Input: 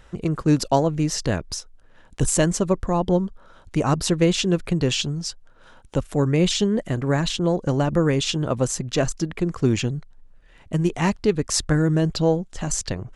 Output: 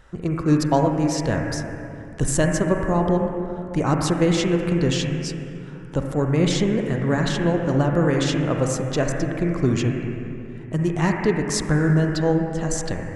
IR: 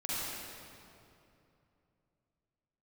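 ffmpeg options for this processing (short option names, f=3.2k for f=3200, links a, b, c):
-filter_complex "[0:a]asplit=2[a][b];[b]highshelf=f=2.9k:t=q:w=3:g=-14[c];[1:a]atrim=start_sample=2205[d];[c][d]afir=irnorm=-1:irlink=0,volume=-6dB[e];[a][e]amix=inputs=2:normalize=0,volume=-3.5dB"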